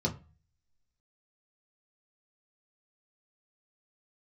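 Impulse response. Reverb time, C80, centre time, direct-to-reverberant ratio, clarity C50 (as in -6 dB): 0.35 s, 21.0 dB, 11 ms, -1.5 dB, 15.5 dB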